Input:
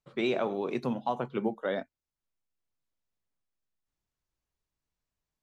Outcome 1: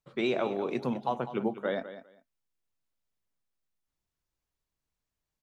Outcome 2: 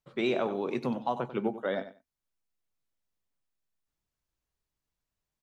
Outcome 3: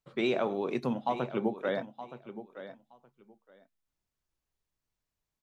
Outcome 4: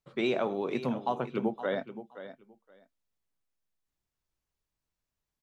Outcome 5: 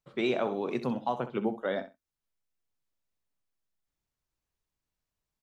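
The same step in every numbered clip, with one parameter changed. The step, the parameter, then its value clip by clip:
repeating echo, delay time: 200, 94, 920, 522, 64 milliseconds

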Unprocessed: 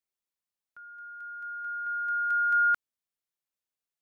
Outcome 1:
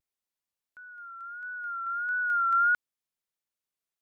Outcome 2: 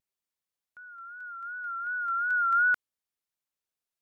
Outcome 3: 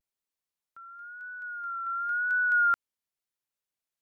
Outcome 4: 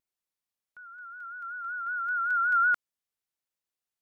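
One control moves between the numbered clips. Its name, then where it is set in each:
pitch vibrato, speed: 1.5, 2.7, 0.95, 5.3 Hertz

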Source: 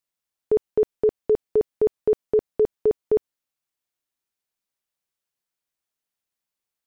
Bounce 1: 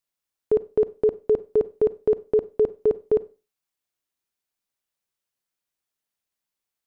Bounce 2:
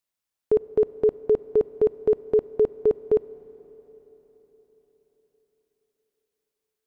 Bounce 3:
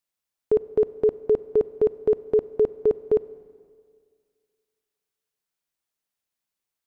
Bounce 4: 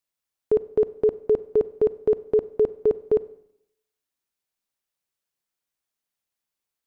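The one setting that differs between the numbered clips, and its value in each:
four-comb reverb, RT60: 0.31, 4.6, 2, 0.73 seconds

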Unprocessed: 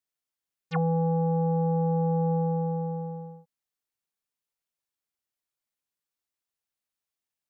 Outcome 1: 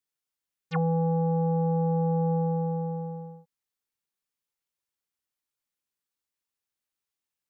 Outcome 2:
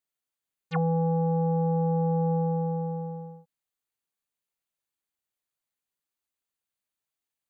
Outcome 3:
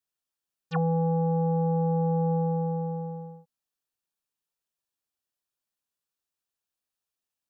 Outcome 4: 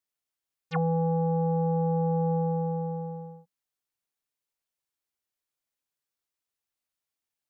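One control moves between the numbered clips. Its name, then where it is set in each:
notch filter, centre frequency: 670, 5,400, 2,100, 190 Hertz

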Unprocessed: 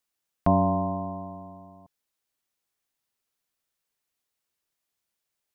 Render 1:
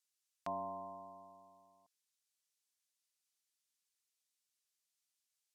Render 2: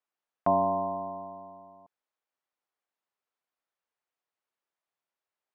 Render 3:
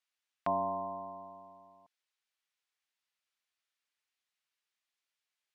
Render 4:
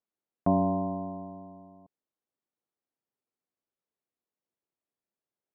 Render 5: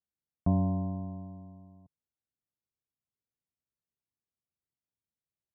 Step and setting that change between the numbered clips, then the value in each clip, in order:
resonant band-pass, frequency: 6,700, 870, 2,500, 330, 100 Hertz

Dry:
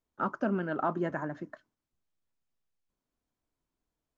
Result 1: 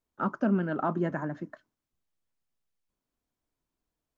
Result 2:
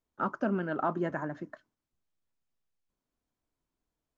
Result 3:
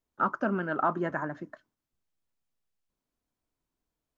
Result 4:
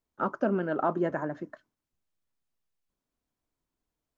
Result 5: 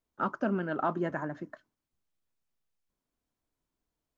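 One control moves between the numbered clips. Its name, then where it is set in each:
dynamic equaliser, frequency: 190, 9,600, 1,300, 490, 3,400 Hertz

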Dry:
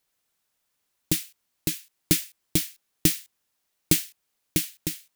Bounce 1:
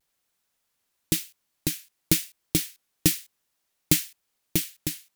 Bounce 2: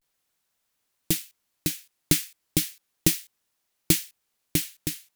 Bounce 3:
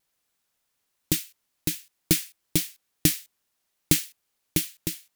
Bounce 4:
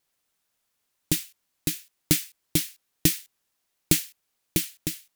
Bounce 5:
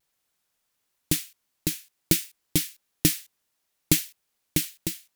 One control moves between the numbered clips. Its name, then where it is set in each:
pitch vibrato, speed: 0.97, 0.36, 3.5, 8.8, 1.5 Hertz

